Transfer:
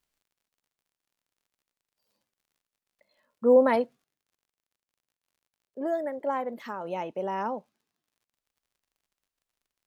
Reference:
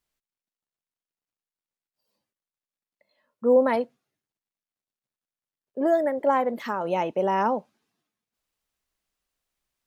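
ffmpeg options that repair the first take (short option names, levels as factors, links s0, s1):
-af "adeclick=t=4,asetnsamples=n=441:p=0,asendcmd='4.04 volume volume 7.5dB',volume=1"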